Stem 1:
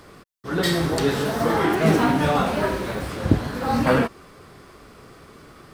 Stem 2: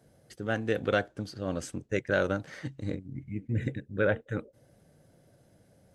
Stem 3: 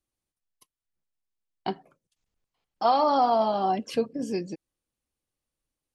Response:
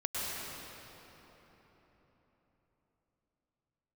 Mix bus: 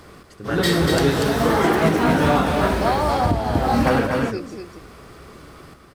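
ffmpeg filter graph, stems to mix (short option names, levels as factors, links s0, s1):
-filter_complex "[0:a]equalizer=f=64:w=2.6:g=7.5,volume=1.26,asplit=2[s0][s1];[s1]volume=0.596[s2];[1:a]volume=1[s3];[2:a]highpass=200,volume=1,asplit=2[s4][s5];[s5]volume=0.531[s6];[s2][s6]amix=inputs=2:normalize=0,aecho=0:1:240:1[s7];[s0][s3][s4][s7]amix=inputs=4:normalize=0,alimiter=limit=0.473:level=0:latency=1:release=290"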